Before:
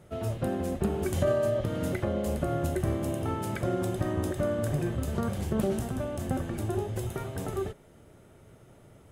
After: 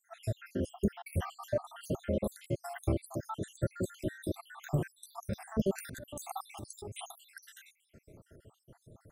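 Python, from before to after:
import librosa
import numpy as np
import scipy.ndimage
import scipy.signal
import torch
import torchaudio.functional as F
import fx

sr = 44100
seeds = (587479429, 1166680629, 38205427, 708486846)

y = fx.spec_dropout(x, sr, seeds[0], share_pct=76)
y = fx.over_compress(y, sr, threshold_db=-42.0, ratio=-1.0, at=(5.75, 7.1), fade=0.02)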